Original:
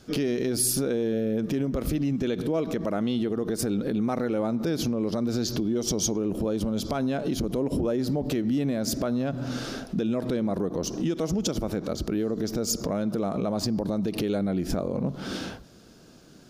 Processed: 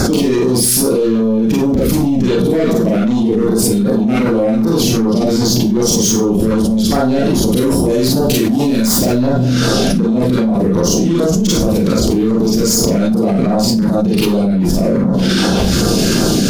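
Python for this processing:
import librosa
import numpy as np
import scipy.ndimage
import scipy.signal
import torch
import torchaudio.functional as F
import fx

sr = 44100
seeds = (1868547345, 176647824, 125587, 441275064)

y = fx.high_shelf(x, sr, hz=2900.0, db=10.5, at=(7.45, 9.02))
y = fx.fold_sine(y, sr, drive_db=12, ceiling_db=-8.5)
y = fx.filter_lfo_notch(y, sr, shape='saw_down', hz=2.6, low_hz=540.0, high_hz=3200.0, q=0.76)
y = fx.rev_schroeder(y, sr, rt60_s=0.31, comb_ms=32, drr_db=-5.0)
y = fx.env_flatten(y, sr, amount_pct=100)
y = F.gain(torch.from_numpy(y), -11.5).numpy()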